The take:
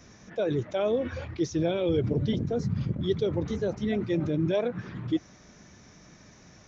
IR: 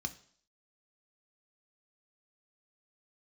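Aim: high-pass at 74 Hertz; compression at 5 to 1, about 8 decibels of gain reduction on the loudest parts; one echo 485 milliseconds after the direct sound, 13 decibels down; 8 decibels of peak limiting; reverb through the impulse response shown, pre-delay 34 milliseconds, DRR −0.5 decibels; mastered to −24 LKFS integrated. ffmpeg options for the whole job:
-filter_complex "[0:a]highpass=74,acompressor=threshold=-31dB:ratio=5,alimiter=level_in=6dB:limit=-24dB:level=0:latency=1,volume=-6dB,aecho=1:1:485:0.224,asplit=2[link_01][link_02];[1:a]atrim=start_sample=2205,adelay=34[link_03];[link_02][link_03]afir=irnorm=-1:irlink=0,volume=0.5dB[link_04];[link_01][link_04]amix=inputs=2:normalize=0,volume=9.5dB"

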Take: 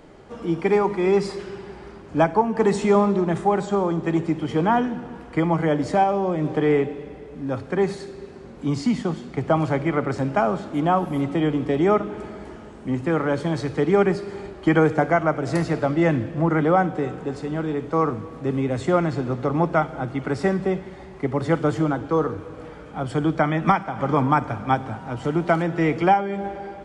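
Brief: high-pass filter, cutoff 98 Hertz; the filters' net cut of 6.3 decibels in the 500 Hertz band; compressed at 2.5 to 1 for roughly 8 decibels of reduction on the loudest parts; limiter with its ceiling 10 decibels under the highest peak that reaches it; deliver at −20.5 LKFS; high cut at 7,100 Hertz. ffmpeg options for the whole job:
ffmpeg -i in.wav -af "highpass=98,lowpass=7100,equalizer=frequency=500:width_type=o:gain=-8.5,acompressor=threshold=-28dB:ratio=2.5,volume=13.5dB,alimiter=limit=-10.5dB:level=0:latency=1" out.wav

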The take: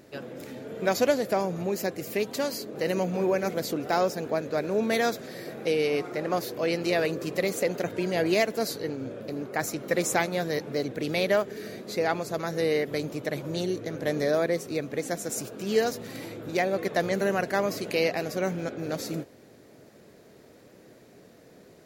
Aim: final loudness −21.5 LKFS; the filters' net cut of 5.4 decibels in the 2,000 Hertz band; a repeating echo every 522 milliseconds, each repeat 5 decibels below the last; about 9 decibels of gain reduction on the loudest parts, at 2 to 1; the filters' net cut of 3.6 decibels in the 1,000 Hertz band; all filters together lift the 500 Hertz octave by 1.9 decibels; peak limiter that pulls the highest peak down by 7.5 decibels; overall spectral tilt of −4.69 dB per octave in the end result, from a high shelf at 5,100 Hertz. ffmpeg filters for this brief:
ffmpeg -i in.wav -af "equalizer=frequency=500:width_type=o:gain=4.5,equalizer=frequency=1000:width_type=o:gain=-8,equalizer=frequency=2000:width_type=o:gain=-5,highshelf=frequency=5100:gain=4,acompressor=threshold=-33dB:ratio=2,alimiter=level_in=2dB:limit=-24dB:level=0:latency=1,volume=-2dB,aecho=1:1:522|1044|1566|2088|2610|3132|3654:0.562|0.315|0.176|0.0988|0.0553|0.031|0.0173,volume=13dB" out.wav

